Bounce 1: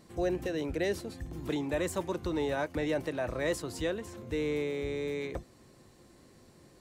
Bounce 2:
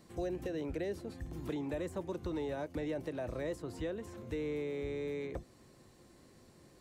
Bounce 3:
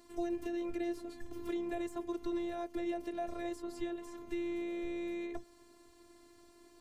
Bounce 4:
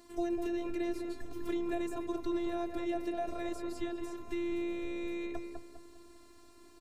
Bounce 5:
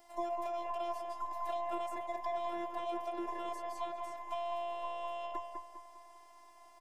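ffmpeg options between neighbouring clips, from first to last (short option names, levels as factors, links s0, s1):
-filter_complex "[0:a]acrossover=split=710|2500[s0][s1][s2];[s0]acompressor=threshold=0.0251:ratio=4[s3];[s1]acompressor=threshold=0.00355:ratio=4[s4];[s2]acompressor=threshold=0.00158:ratio=4[s5];[s3][s4][s5]amix=inputs=3:normalize=0,volume=0.75"
-af "afftfilt=real='hypot(re,im)*cos(PI*b)':imag='0':win_size=512:overlap=0.75,volume=1.5"
-filter_complex "[0:a]asplit=2[s0][s1];[s1]adelay=201,lowpass=f=1600:p=1,volume=0.631,asplit=2[s2][s3];[s3]adelay=201,lowpass=f=1600:p=1,volume=0.44,asplit=2[s4][s5];[s5]adelay=201,lowpass=f=1600:p=1,volume=0.44,asplit=2[s6][s7];[s7]adelay=201,lowpass=f=1600:p=1,volume=0.44,asplit=2[s8][s9];[s9]adelay=201,lowpass=f=1600:p=1,volume=0.44,asplit=2[s10][s11];[s11]adelay=201,lowpass=f=1600:p=1,volume=0.44[s12];[s0][s2][s4][s6][s8][s10][s12]amix=inputs=7:normalize=0,volume=1.33"
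-af "afftfilt=real='real(if(between(b,1,1008),(2*floor((b-1)/48)+1)*48-b,b),0)':imag='imag(if(between(b,1,1008),(2*floor((b-1)/48)+1)*48-b,b),0)*if(between(b,1,1008),-1,1)':win_size=2048:overlap=0.75,volume=0.631"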